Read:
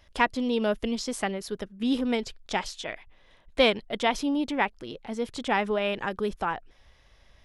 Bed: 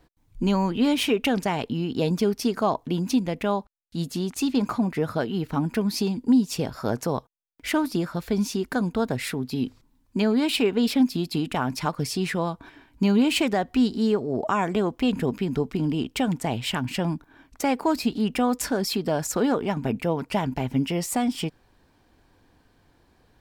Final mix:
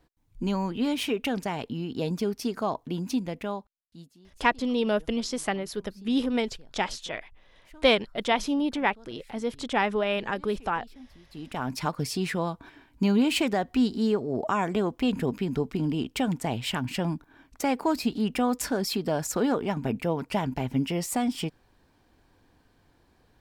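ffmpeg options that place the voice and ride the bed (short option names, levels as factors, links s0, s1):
-filter_complex "[0:a]adelay=4250,volume=1.06[s0];[1:a]volume=10.6,afade=t=out:st=3.28:d=0.86:silence=0.0707946,afade=t=in:st=11.29:d=0.48:silence=0.0501187[s1];[s0][s1]amix=inputs=2:normalize=0"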